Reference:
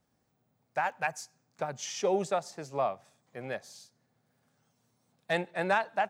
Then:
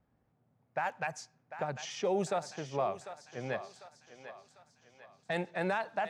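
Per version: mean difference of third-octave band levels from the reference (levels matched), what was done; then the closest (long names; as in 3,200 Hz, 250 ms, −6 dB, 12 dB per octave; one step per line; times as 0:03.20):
4.5 dB: low-pass that shuts in the quiet parts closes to 2,100 Hz, open at −25.5 dBFS
low-shelf EQ 96 Hz +9 dB
brickwall limiter −22.5 dBFS, peak gain reduction 7.5 dB
feedback echo with a high-pass in the loop 747 ms, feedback 50%, high-pass 520 Hz, level −10.5 dB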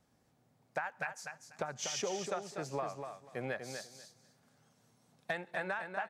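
7.5 dB: dynamic equaliser 1,500 Hz, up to +8 dB, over −45 dBFS, Q 1.3
downward compressor 16 to 1, threshold −37 dBFS, peak gain reduction 20 dB
repeating echo 244 ms, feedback 19%, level −7 dB
downsampling to 32,000 Hz
level +3 dB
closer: first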